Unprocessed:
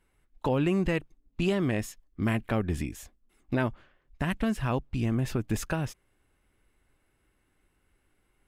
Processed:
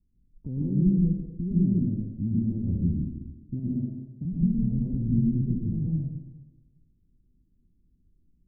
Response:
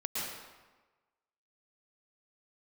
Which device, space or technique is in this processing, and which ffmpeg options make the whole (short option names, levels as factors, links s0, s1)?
club heard from the street: -filter_complex "[0:a]asettb=1/sr,asplit=3[s0][s1][s2];[s0]atrim=end=3.594[s3];[s1]atrim=start=3.59:end=4.25,asetpts=PTS-STARTPTS,afade=t=in:d=0.004:c=qsin,afade=t=out:st=0.656:d=0.004:c=qsin,highpass=f=110:w=0.5412,highpass=f=110:w=1.3066[s4];[s2]atrim=start=4.246[s5];[s3][s4]acrossfade=d=0.004:c1=hsin:c2=qsin[s6];[s6][s5]acrossfade=d=0.004:c1=qsin:c2=hsin,alimiter=limit=0.1:level=0:latency=1:release=24,lowpass=f=240:w=0.5412,lowpass=f=240:w=1.3066[s7];[1:a]atrim=start_sample=2205[s8];[s7][s8]afir=irnorm=-1:irlink=0,volume=1.58"